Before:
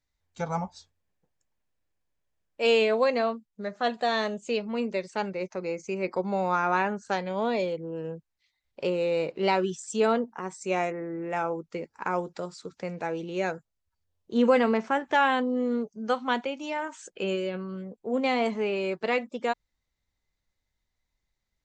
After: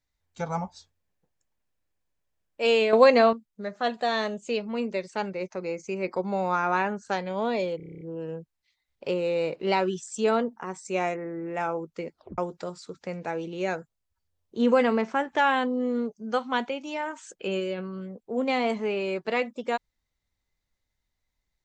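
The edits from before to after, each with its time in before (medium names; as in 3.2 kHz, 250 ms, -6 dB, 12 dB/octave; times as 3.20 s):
2.93–3.33 s: gain +7.5 dB
7.77 s: stutter 0.03 s, 9 plays
11.89 s: tape stop 0.25 s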